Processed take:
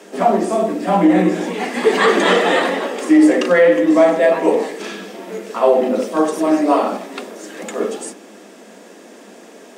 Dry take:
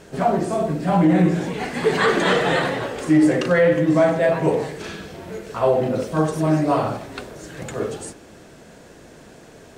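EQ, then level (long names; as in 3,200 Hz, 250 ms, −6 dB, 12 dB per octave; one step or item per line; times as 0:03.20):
Butterworth high-pass 190 Hz 96 dB per octave
notch filter 1,500 Hz, Q 12
notch filter 4,200 Hz, Q 16
+5.0 dB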